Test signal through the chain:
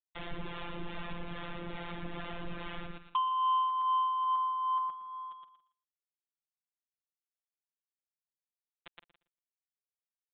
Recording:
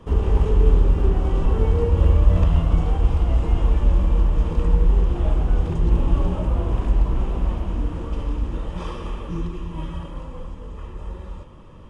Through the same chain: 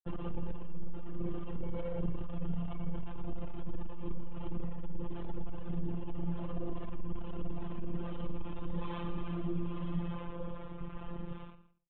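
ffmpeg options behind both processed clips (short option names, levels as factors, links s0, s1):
-filter_complex "[0:a]aeval=exprs='sgn(val(0))*max(abs(val(0))-0.0224,0)':c=same,asplit=2[s0][s1];[s1]aecho=0:1:117|234|351:0.708|0.135|0.0256[s2];[s0][s2]amix=inputs=2:normalize=0,afftfilt=real='hypot(re,im)*cos(PI*b)':imag='0':win_size=1024:overlap=0.75,acompressor=threshold=0.0398:ratio=8,aresample=8000,asoftclip=type=tanh:threshold=0.0335,aresample=44100,acrossover=split=530[s3][s4];[s3]aeval=exprs='val(0)*(1-0.5/2+0.5/2*cos(2*PI*2.4*n/s))':c=same[s5];[s4]aeval=exprs='val(0)*(1-0.5/2-0.5/2*cos(2*PI*2.4*n/s))':c=same[s6];[s5][s6]amix=inputs=2:normalize=0,asplit=2[s7][s8];[s8]adelay=163.3,volume=0.141,highshelf=f=4000:g=-3.67[s9];[s7][s9]amix=inputs=2:normalize=0,adynamicequalizer=threshold=0.002:dfrequency=2300:dqfactor=0.7:tfrequency=2300:tqfactor=0.7:attack=5:release=100:ratio=0.375:range=2:mode=cutabove:tftype=highshelf,volume=1.88"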